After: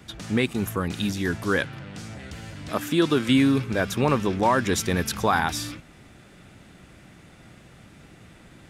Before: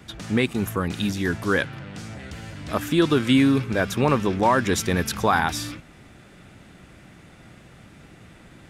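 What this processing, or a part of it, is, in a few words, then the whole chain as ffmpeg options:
exciter from parts: -filter_complex "[0:a]asplit=2[s0][s1];[s1]highpass=2400,asoftclip=type=tanh:threshold=0.0631,volume=0.224[s2];[s0][s2]amix=inputs=2:normalize=0,asettb=1/sr,asplit=3[s3][s4][s5];[s3]atrim=end=2.694[s6];[s4]atrim=start=2.69:end=3.29,asetpts=PTS-STARTPTS,afade=t=in:d=0.004:c=qsin,afade=t=out:st=0.596:d=0.004:c=qsin,highpass=130[s7];[s5]atrim=start=3.286[s8];[s6][s7]acrossfade=d=0.004:c1=hsin:c2=qsin[s9];[s9][s8]acrossfade=d=0.004:c1=qsin:c2=hsin,volume=0.841"

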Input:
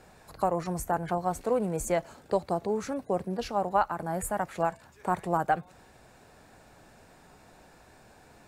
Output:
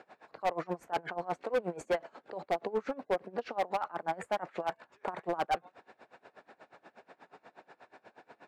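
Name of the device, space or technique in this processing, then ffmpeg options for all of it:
helicopter radio: -af "highpass=340,lowpass=2800,aeval=exprs='val(0)*pow(10,-25*(0.5-0.5*cos(2*PI*8.3*n/s))/20)':c=same,asoftclip=type=hard:threshold=0.0282,volume=2.11"

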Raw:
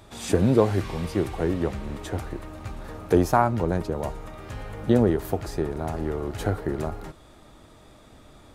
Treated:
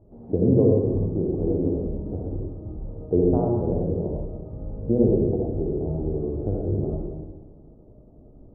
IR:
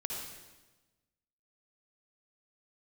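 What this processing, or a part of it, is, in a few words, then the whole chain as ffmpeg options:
next room: -filter_complex "[0:a]lowpass=f=560:w=0.5412,lowpass=f=560:w=1.3066[s0];[1:a]atrim=start_sample=2205[s1];[s0][s1]afir=irnorm=-1:irlink=0"

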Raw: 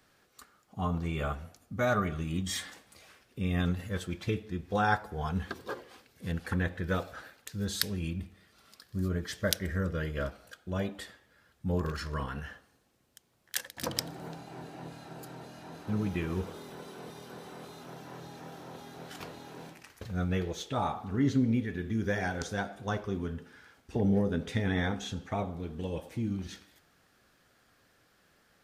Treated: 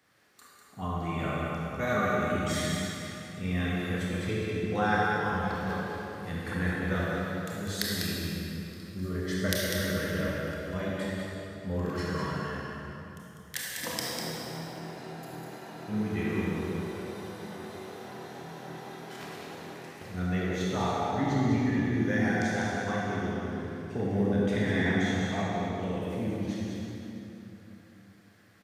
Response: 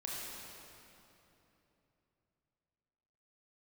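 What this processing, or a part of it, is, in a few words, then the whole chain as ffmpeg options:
PA in a hall: -filter_complex "[0:a]highpass=100,equalizer=f=2000:t=o:w=0.27:g=6,aecho=1:1:198:0.501[s0];[1:a]atrim=start_sample=2205[s1];[s0][s1]afir=irnorm=-1:irlink=0,volume=1.12"

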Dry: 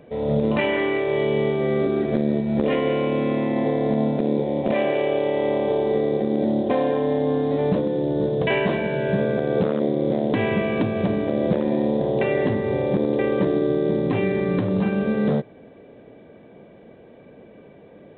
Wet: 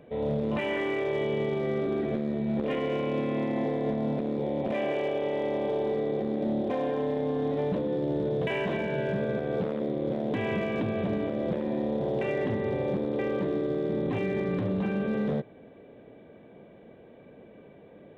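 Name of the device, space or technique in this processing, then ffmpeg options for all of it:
limiter into clipper: -af "alimiter=limit=0.141:level=0:latency=1:release=12,asoftclip=type=hard:threshold=0.126,volume=0.596"

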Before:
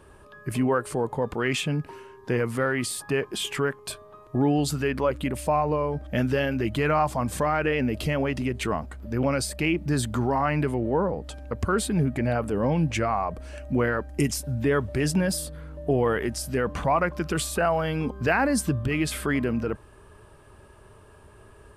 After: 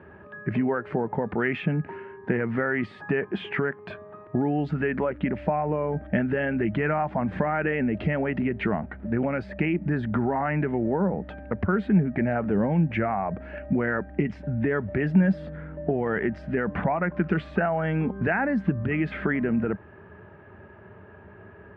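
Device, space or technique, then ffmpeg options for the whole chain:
bass amplifier: -af "acompressor=threshold=0.0501:ratio=6,highpass=f=86:w=0.5412,highpass=f=86:w=1.3066,equalizer=f=130:t=q:w=4:g=-7,equalizer=f=190:t=q:w=4:g=7,equalizer=f=280:t=q:w=4:g=-3,equalizer=f=500:t=q:w=4:g=-5,equalizer=f=1100:t=q:w=4:g=-9,equalizer=f=1800:t=q:w=4:g=3,lowpass=f=2100:w=0.5412,lowpass=f=2100:w=1.3066,volume=2.11"

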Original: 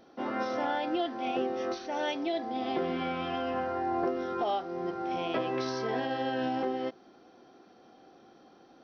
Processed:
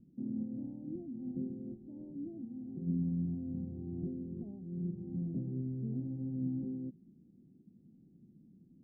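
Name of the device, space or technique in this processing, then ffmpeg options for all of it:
the neighbour's flat through the wall: -filter_complex "[0:a]lowpass=f=210:w=0.5412,lowpass=f=210:w=1.3066,equalizer=f=170:t=o:w=0.88:g=8,asplit=3[s0][s1][s2];[s0]afade=t=out:st=2.44:d=0.02[s3];[s1]tiltshelf=f=1400:g=-6,afade=t=in:st=2.44:d=0.02,afade=t=out:st=2.86:d=0.02[s4];[s2]afade=t=in:st=2.86:d=0.02[s5];[s3][s4][s5]amix=inputs=3:normalize=0,volume=1.5"

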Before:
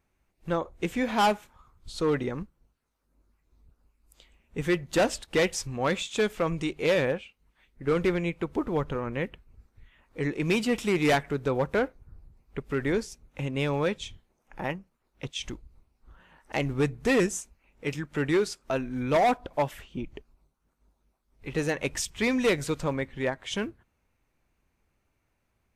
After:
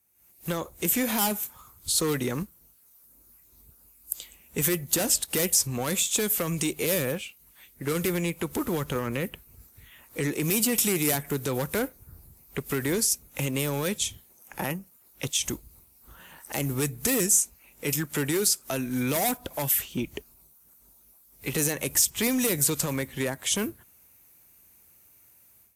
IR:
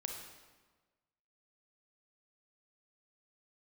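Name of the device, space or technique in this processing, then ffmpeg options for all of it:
FM broadcast chain: -filter_complex "[0:a]highpass=69,dynaudnorm=f=140:g=3:m=4.73,acrossover=split=310|1300|7800[s0][s1][s2][s3];[s0]acompressor=threshold=0.112:ratio=4[s4];[s1]acompressor=threshold=0.0794:ratio=4[s5];[s2]acompressor=threshold=0.0355:ratio=4[s6];[s3]acompressor=threshold=0.0112:ratio=4[s7];[s4][s5][s6][s7]amix=inputs=4:normalize=0,aemphasis=mode=production:type=50fm,alimiter=limit=0.282:level=0:latency=1:release=31,asoftclip=type=hard:threshold=0.2,lowpass=f=15000:w=0.5412,lowpass=f=15000:w=1.3066,aemphasis=mode=production:type=50fm,volume=0.447"

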